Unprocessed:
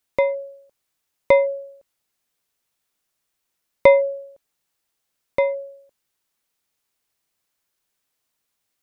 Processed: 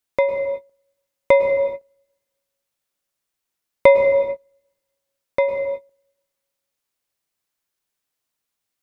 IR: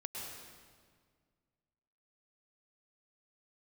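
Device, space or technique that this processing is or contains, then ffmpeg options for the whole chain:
keyed gated reverb: -filter_complex "[0:a]asplit=3[link_01][link_02][link_03];[1:a]atrim=start_sample=2205[link_04];[link_02][link_04]afir=irnorm=-1:irlink=0[link_05];[link_03]apad=whole_len=389012[link_06];[link_05][link_06]sidechaingate=range=-33dB:threshold=-42dB:ratio=16:detection=peak,volume=1.5dB[link_07];[link_01][link_07]amix=inputs=2:normalize=0,volume=-4dB"

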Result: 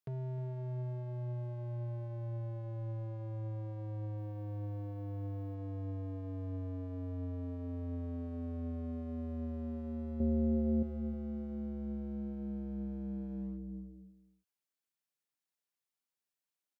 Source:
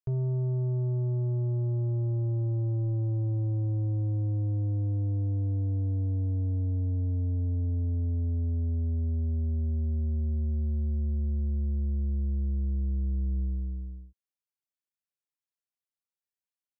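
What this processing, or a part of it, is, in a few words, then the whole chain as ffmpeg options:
limiter into clipper: -filter_complex "[0:a]asettb=1/sr,asplit=3[link_01][link_02][link_03];[link_01]atrim=end=4.184[link_04];[link_02]atrim=start=4.18:end=5.55,asetpts=PTS-STARTPTS,afade=type=in:duration=0.004:curve=qsin,afade=type=out:start_time=1.366:duration=0.004:curve=qsin,aemphasis=mode=production:type=50fm[link_05];[link_03]atrim=start=5.546[link_06];[link_04][link_05]acrossfade=duration=0.004:curve1=hsin:curve2=qsin[link_07];[link_07][link_06]acrossfade=duration=0.004:curve1=qsin:curve2=hsin,highpass=frequency=120:width=0.5412,highpass=frequency=120:width=1.3066,alimiter=level_in=9.5dB:limit=-24dB:level=0:latency=1,volume=-9.5dB,asoftclip=type=hard:threshold=-38.5dB,asettb=1/sr,asplit=3[link_08][link_09][link_10];[link_08]atrim=end=10.204[link_11];[link_09]atrim=start=10.2:end=10.83,asetpts=PTS-STARTPTS,afade=type=in:duration=0.004:curve=qsin,afade=type=out:start_time=0.626:duration=0.004:curve=qsin,lowshelf=frequency=740:width_type=q:width=1.5:gain=8.5[link_12];[link_10]atrim=start=10.826[link_13];[link_11][link_12]acrossfade=duration=0.004:curve1=hsin:curve2=qsin[link_14];[link_14][link_13]acrossfade=duration=0.004:curve1=qsin:curve2=hsin,asplit=2[link_15][link_16];[link_16]adelay=309,volume=-15dB,highshelf=frequency=4000:gain=-6.95[link_17];[link_15][link_17]amix=inputs=2:normalize=0,volume=1.5dB"

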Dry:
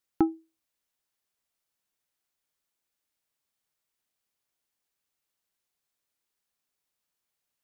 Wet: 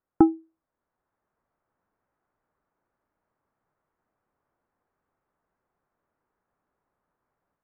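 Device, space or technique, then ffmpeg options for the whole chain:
action camera in a waterproof case: -af "lowpass=frequency=1400:width=0.5412,lowpass=frequency=1400:width=1.3066,dynaudnorm=framelen=580:gausssize=3:maxgain=8dB,volume=6.5dB" -ar 48000 -c:a aac -b:a 48k

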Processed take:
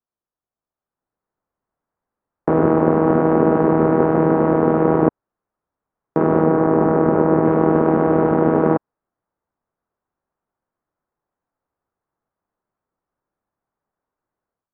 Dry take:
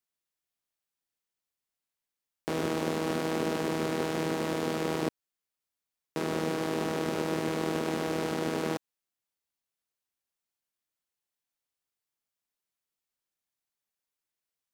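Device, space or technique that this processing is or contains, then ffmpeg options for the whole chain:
action camera in a waterproof case: -filter_complex "[0:a]asettb=1/sr,asplit=3[link_01][link_02][link_03];[link_01]atrim=end=6.454[link_04];[link_02]atrim=start=6.45:end=7.45,asetpts=PTS-STARTPTS,afade=type=in:duration=0.004:curve=qsin,afade=type=out:start_time=0.996:duration=0.004:curve=qsin,acrossover=split=2900[link_05][link_06];[link_06]acompressor=threshold=-53dB:ratio=4:attack=1:release=60[link_07];[link_05][link_07]amix=inputs=2:normalize=0[link_08];[link_03]atrim=start=7.446[link_09];[link_04][link_08]acrossfade=duration=0.004:curve1=hsin:curve2=qsin[link_10];[link_10][link_09]acrossfade=duration=0.004:curve1=qsin:curve2=hsin,lowpass=frequency=1300:width=0.5412,lowpass=frequency=1300:width=1.3066,dynaudnorm=framelen=690:gausssize=3:maxgain=11.5dB,volume=4.5dB" -ar 32000 -c:a aac -b:a 96k

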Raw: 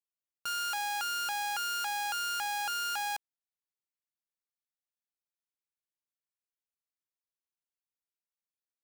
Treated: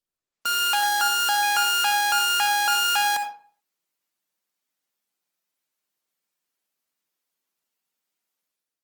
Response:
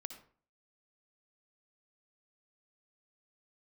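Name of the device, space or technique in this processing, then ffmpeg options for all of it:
far-field microphone of a smart speaker: -filter_complex "[0:a]asettb=1/sr,asplit=3[link_01][link_02][link_03];[link_01]atrim=end=0.754[link_04];[link_02]atrim=start=0.75:end=1.43,asetpts=PTS-STARTPTS,afade=type=in:duration=0.004:curve=qsin,afade=type=out:start_time=0.676:duration=0.004:curve=qsin,bandreject=frequency=2500:width=5.5[link_05];[link_03]atrim=start=1.426[link_06];[link_04][link_05]acrossfade=duration=0.004:curve1=hsin:curve2=qsin[link_07];[link_07][link_06]acrossfade=duration=0.004:curve1=qsin:curve2=hsin[link_08];[1:a]atrim=start_sample=2205[link_09];[link_08][link_09]afir=irnorm=-1:irlink=0,highpass=frequency=150:width=0.5412,highpass=frequency=150:width=1.3066,dynaudnorm=framelen=110:gausssize=7:maxgain=10.5dB,volume=6dB" -ar 48000 -c:a libopus -b:a 24k

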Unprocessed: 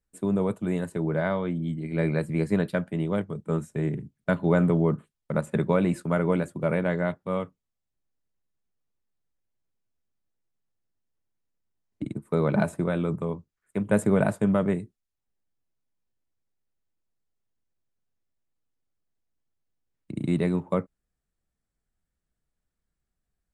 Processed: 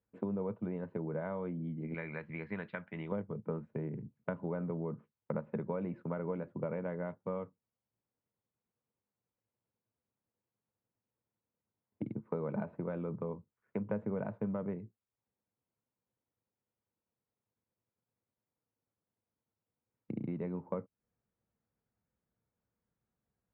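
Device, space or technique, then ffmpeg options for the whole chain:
bass amplifier: -filter_complex "[0:a]asettb=1/sr,asplit=3[link_01][link_02][link_03];[link_01]atrim=end=1.944[link_04];[link_02]atrim=start=1.94:end=3.12,asetpts=PTS-STARTPTS,afade=type=in:duration=0.004:curve=qsin,afade=type=out:start_time=1.176:duration=0.004:curve=qsin,equalizer=frequency=125:width_type=o:width=1:gain=-8,equalizer=frequency=250:width_type=o:width=1:gain=-6,equalizer=frequency=500:width_type=o:width=1:gain=-8,equalizer=frequency=2000:width_type=o:width=1:gain=9,equalizer=frequency=4000:width_type=o:width=1:gain=9[link_05];[link_03]atrim=start=3.116[link_06];[link_04][link_05]acrossfade=duration=0.004:curve1=hsin:curve2=qsin[link_07];[link_07][link_06]acrossfade=duration=0.004:curve1=qsin:curve2=hsin,acompressor=threshold=-37dB:ratio=5,highpass=87,equalizer=frequency=110:width_type=q:width=4:gain=7,equalizer=frequency=220:width_type=q:width=4:gain=5,equalizer=frequency=490:width_type=q:width=4:gain=7,equalizer=frequency=930:width_type=q:width=4:gain=5,equalizer=frequency=1800:width_type=q:width=4:gain=-4,lowpass=frequency=2300:width=0.5412,lowpass=frequency=2300:width=1.3066,volume=-1.5dB"

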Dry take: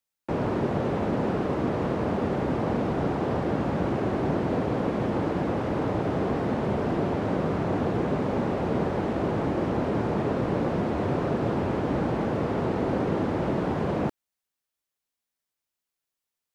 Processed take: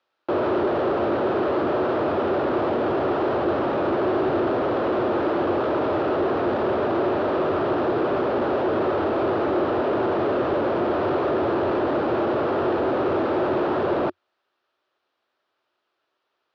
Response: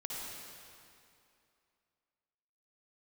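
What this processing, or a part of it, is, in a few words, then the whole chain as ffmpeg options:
overdrive pedal into a guitar cabinet: -filter_complex "[0:a]asplit=2[link_01][link_02];[link_02]highpass=frequency=720:poles=1,volume=34dB,asoftclip=type=tanh:threshold=-13dB[link_03];[link_01][link_03]amix=inputs=2:normalize=0,lowpass=frequency=1400:poles=1,volume=-6dB,highpass=78,equalizer=frequency=90:width_type=q:width=4:gain=6,equalizer=frequency=180:width_type=q:width=4:gain=-8,equalizer=frequency=360:width_type=q:width=4:gain=9,equalizer=frequency=600:width_type=q:width=4:gain=5,equalizer=frequency=1300:width_type=q:width=4:gain=5,equalizer=frequency=2100:width_type=q:width=4:gain=-6,lowpass=frequency=4400:width=0.5412,lowpass=frequency=4400:width=1.3066,volume=-6dB"

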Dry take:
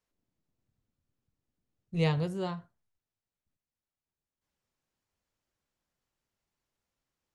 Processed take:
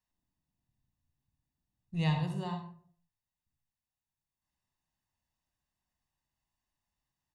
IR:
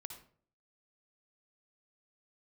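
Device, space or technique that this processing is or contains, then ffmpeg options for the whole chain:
microphone above a desk: -filter_complex "[0:a]aecho=1:1:1.1:0.66[link_01];[1:a]atrim=start_sample=2205[link_02];[link_01][link_02]afir=irnorm=-1:irlink=0"

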